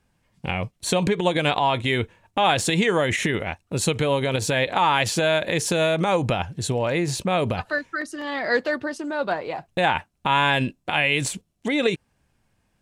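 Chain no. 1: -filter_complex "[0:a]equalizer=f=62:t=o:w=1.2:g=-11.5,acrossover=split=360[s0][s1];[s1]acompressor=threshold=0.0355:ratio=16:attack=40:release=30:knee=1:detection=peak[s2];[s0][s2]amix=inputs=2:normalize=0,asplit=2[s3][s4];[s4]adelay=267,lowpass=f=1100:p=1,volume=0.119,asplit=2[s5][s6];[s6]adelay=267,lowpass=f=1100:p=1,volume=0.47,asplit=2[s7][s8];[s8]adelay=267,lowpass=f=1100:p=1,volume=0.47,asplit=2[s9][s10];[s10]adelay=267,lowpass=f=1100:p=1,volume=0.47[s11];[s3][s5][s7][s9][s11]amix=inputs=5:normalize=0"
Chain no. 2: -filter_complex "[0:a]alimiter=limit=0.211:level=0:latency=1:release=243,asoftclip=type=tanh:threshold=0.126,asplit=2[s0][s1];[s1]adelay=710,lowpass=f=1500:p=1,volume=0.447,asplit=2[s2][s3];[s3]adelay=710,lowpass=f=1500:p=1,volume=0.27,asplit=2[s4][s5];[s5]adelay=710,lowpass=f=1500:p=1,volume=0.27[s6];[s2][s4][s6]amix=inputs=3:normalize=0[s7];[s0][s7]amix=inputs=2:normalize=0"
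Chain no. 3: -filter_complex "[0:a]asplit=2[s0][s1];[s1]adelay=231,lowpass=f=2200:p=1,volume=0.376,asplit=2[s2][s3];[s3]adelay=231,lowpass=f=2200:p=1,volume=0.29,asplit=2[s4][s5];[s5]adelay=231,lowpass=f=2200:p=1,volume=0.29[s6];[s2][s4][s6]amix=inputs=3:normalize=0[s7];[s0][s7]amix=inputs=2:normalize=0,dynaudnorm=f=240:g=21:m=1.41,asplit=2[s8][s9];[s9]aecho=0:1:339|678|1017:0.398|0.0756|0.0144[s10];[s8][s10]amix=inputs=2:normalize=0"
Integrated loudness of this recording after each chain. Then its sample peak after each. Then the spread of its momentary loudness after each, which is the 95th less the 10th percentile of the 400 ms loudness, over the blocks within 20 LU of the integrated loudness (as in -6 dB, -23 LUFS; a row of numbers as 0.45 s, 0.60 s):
-25.5 LUFS, -27.0 LUFS, -20.5 LUFS; -6.5 dBFS, -15.5 dBFS, -4.0 dBFS; 6 LU, 6 LU, 8 LU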